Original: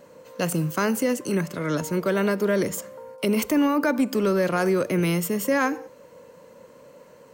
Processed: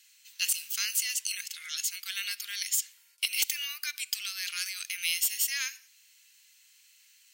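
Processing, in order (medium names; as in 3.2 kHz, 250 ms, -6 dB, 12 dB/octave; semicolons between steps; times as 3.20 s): inverse Chebyshev high-pass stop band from 770 Hz, stop band 60 dB; sine folder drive 6 dB, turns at -14 dBFS; dynamic bell 4.1 kHz, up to +4 dB, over -37 dBFS, Q 0.86; trim -5 dB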